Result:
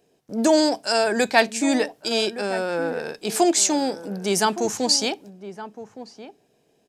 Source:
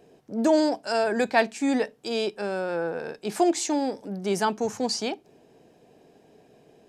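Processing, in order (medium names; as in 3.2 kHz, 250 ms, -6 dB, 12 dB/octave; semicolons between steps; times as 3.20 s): gate -47 dBFS, range -12 dB; treble shelf 3 kHz +10.5 dB; echo from a far wall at 200 m, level -13 dB; trim +2.5 dB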